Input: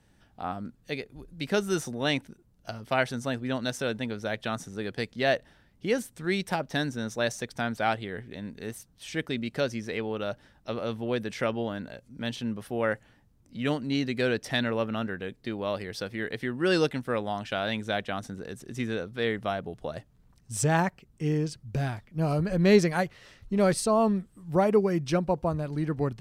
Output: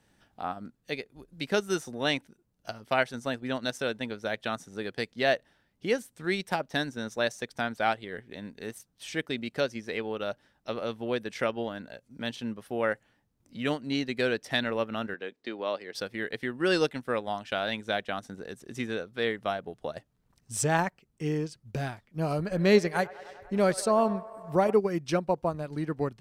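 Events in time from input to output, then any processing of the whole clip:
15.14–15.95 s: three-band isolator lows -21 dB, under 220 Hz, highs -22 dB, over 7.2 kHz
22.36–24.73 s: feedback echo behind a band-pass 98 ms, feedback 70%, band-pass 950 Hz, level -12 dB
whole clip: bass shelf 150 Hz -9.5 dB; transient shaper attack +1 dB, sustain -6 dB

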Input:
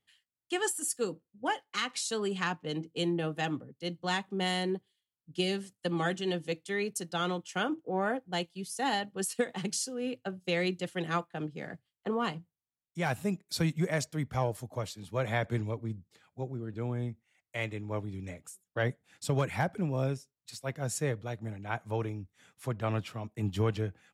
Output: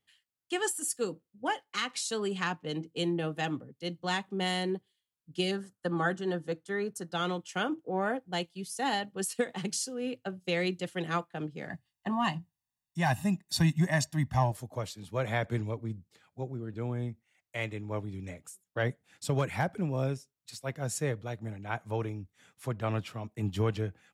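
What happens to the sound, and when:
5.51–7.13 s: resonant high shelf 1.9 kHz -6 dB, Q 3
11.69–14.52 s: comb 1.1 ms, depth 100%

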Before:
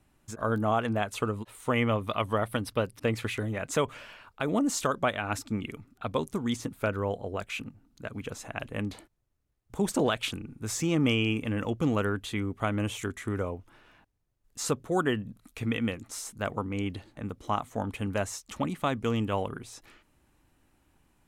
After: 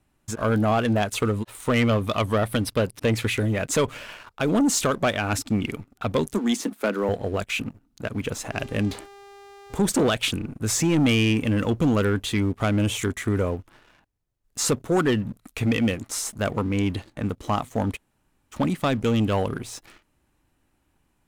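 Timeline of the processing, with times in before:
6.34–7.09 s: Chebyshev high-pass 200 Hz, order 5
8.51–9.82 s: mains buzz 400 Hz, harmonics 20, -52 dBFS -7 dB/octave
17.96–18.54 s: room tone, crossfade 0.06 s
whole clip: dynamic bell 1.1 kHz, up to -4 dB, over -43 dBFS, Q 0.93; waveshaping leveller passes 2; trim +2 dB

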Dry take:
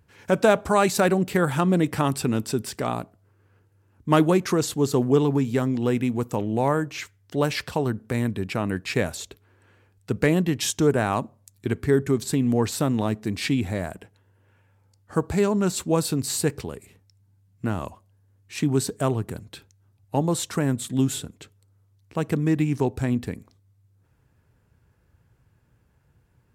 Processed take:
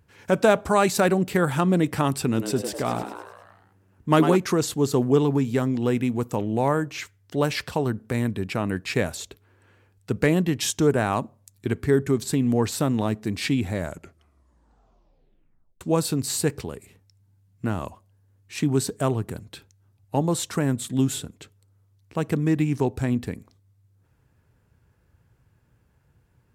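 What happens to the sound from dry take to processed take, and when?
2.27–4.36 s: frequency-shifting echo 101 ms, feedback 59%, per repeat +93 Hz, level -8.5 dB
13.75 s: tape stop 2.06 s

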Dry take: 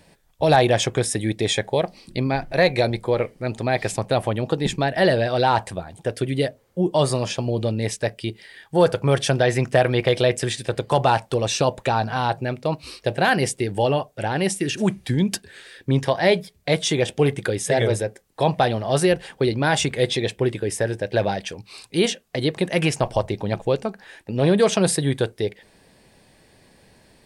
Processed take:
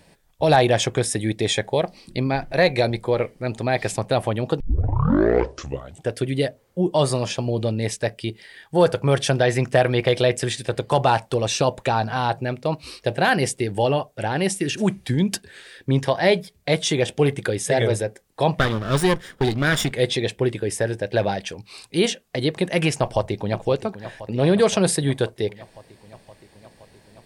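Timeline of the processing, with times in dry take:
4.60 s: tape start 1.50 s
18.59–19.92 s: comb filter that takes the minimum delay 0.57 ms
23.00–23.64 s: echo throw 520 ms, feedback 75%, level -13.5 dB

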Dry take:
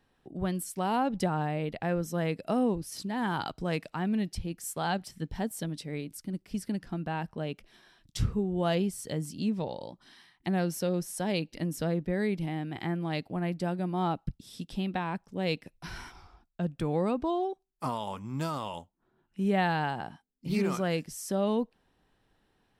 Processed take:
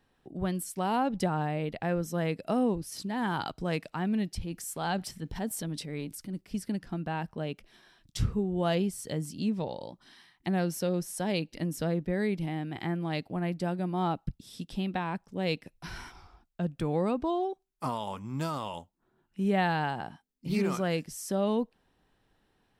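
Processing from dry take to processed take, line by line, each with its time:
4.41–6.41 s: transient shaper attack -4 dB, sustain +6 dB

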